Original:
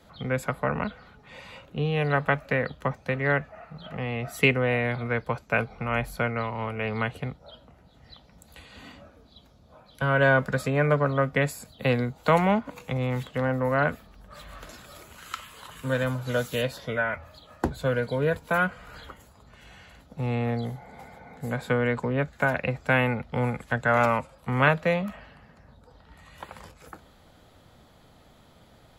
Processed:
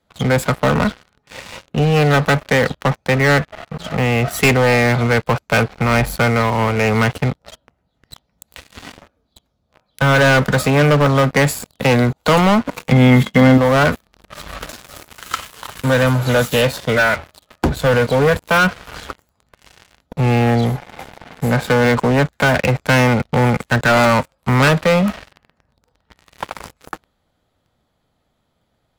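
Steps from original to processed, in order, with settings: waveshaping leveller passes 5; 12.92–13.58 s: small resonant body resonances 210/2100/3300 Hz, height 14 dB; trim -2.5 dB

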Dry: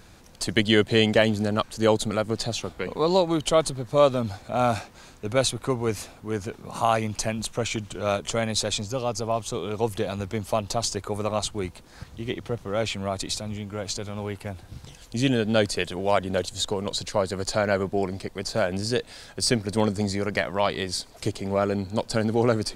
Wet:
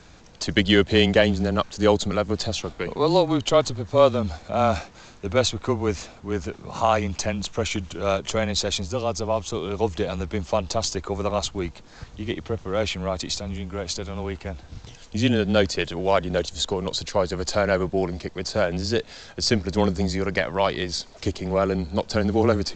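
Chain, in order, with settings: frequency shift -21 Hz; trim +2 dB; G.722 64 kbps 16 kHz

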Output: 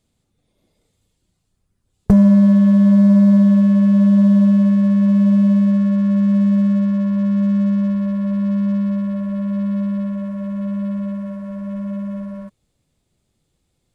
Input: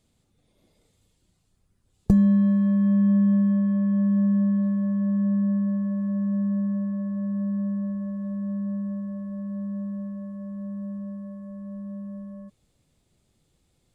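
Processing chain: waveshaping leveller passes 2; trim +3 dB

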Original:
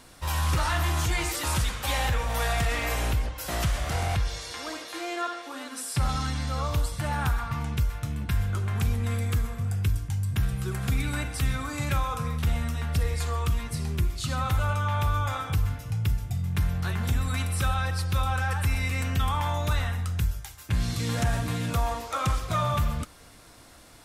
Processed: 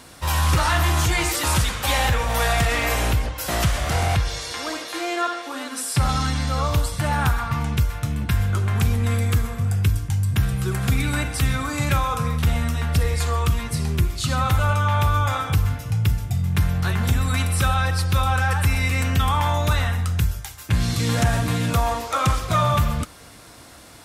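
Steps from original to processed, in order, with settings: high-pass 54 Hz; trim +7 dB

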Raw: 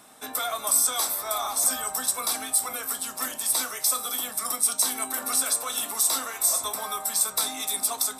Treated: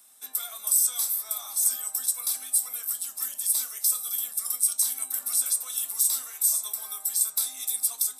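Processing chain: pre-emphasis filter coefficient 0.9; trim -1.5 dB

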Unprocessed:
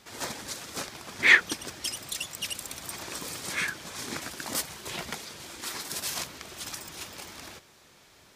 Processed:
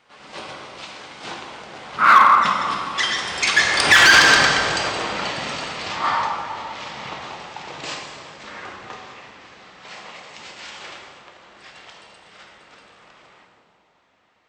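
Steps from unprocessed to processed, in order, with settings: Doppler pass-by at 2.32 s, 23 m/s, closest 1.2 m; low-pass 2 kHz 6 dB/octave; tilt shelf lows -7.5 dB; plate-style reverb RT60 1.6 s, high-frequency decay 0.55×, DRR -1 dB; speed mistake 78 rpm record played at 45 rpm; in parallel at -10 dB: wavefolder -39.5 dBFS; on the sum: high-pass 110 Hz 6 dB/octave; loudness maximiser +30.5 dB; trim -1 dB

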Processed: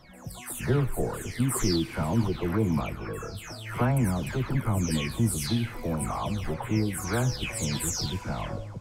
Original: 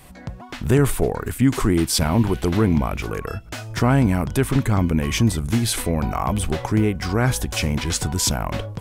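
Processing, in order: delay that grows with frequency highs early, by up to 391 ms; reverberation RT60 3.0 s, pre-delay 8 ms, DRR 18 dB; trim -6.5 dB

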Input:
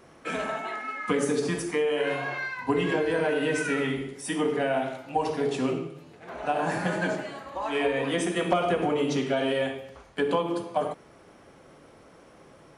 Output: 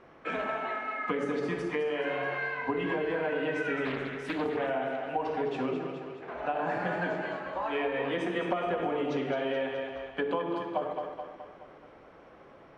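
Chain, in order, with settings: low-pass 2.6 kHz 12 dB/octave; peaking EQ 120 Hz -5.5 dB 2.5 oct; two-band feedback delay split 450 Hz, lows 144 ms, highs 212 ms, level -8 dB; compression 3:1, threshold -28 dBFS, peak gain reduction 7.5 dB; 3.85–4.70 s: loudspeaker Doppler distortion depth 0.37 ms

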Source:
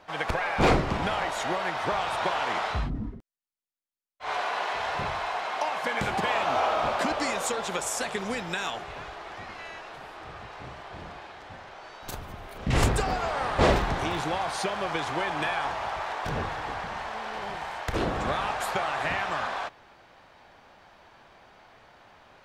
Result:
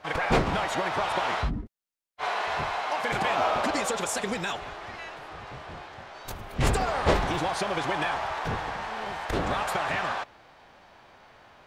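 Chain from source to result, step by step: in parallel at -8.5 dB: hard clipper -22.5 dBFS, distortion -12 dB; on the sum: time stretch by phase-locked vocoder 0.52×

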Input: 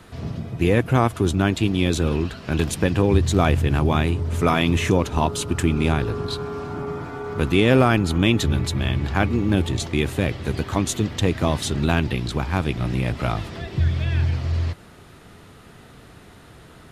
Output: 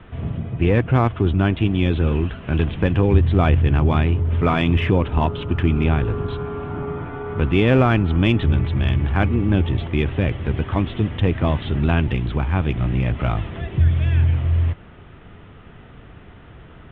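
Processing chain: steep low-pass 3.4 kHz 72 dB/octave; bass shelf 88 Hz +9.5 dB; in parallel at -11.5 dB: hard clipper -19.5 dBFS, distortion -6 dB; on the sum: trim -1.5 dB

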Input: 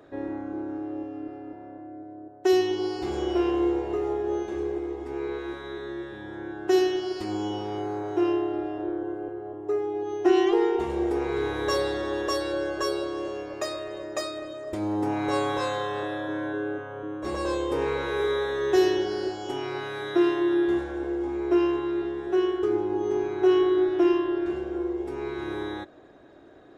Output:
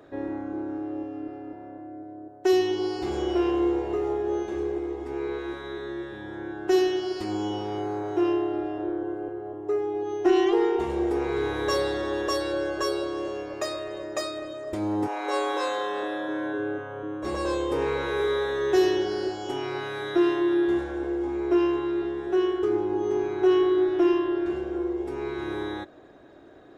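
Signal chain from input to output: in parallel at -9.5 dB: saturation -22.5 dBFS, distortion -11 dB; 15.06–16.57 s: on the sum: high-pass 470 Hz -> 130 Hz 24 dB/octave; trim -1.5 dB

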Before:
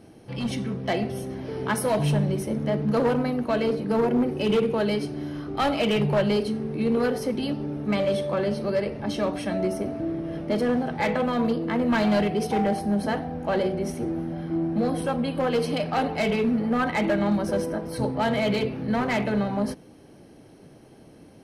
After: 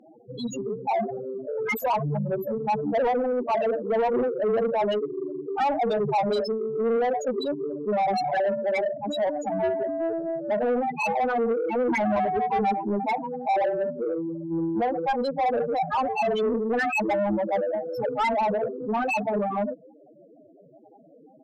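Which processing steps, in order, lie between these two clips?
tilt EQ +2 dB/octave; formant shift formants +4 st; in parallel at -11.5 dB: crossover distortion -35 dBFS; on the sum: loudest bins only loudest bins 4; overdrive pedal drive 19 dB, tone 2.3 kHz, clips at -16 dBFS

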